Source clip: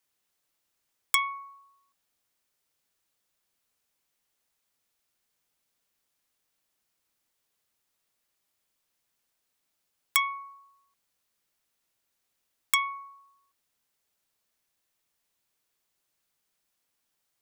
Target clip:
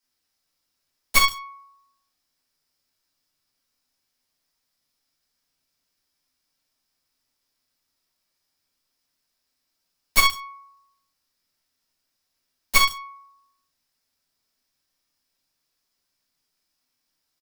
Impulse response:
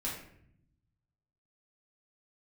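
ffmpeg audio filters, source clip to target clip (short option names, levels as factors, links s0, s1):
-filter_complex "[0:a]equalizer=f=5000:w=3.6:g=11.5,aecho=1:1:141:0.251,aeval=exprs='(mod(5.62*val(0)+1,2)-1)/5.62':c=same[s0];[1:a]atrim=start_sample=2205,atrim=end_sample=4410[s1];[s0][s1]afir=irnorm=-1:irlink=0,aeval=exprs='0.355*(cos(1*acos(clip(val(0)/0.355,-1,1)))-cos(1*PI/2))+0.0708*(cos(7*acos(clip(val(0)/0.355,-1,1)))-cos(7*PI/2))':c=same,volume=2.11"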